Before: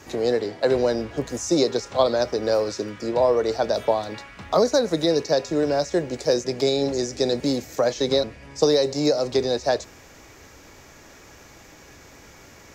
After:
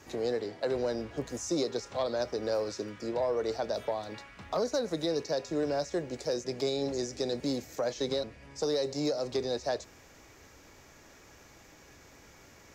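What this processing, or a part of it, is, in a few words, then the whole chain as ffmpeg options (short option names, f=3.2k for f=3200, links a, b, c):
soft clipper into limiter: -af "asoftclip=type=tanh:threshold=-9.5dB,alimiter=limit=-14dB:level=0:latency=1:release=234,volume=-8dB"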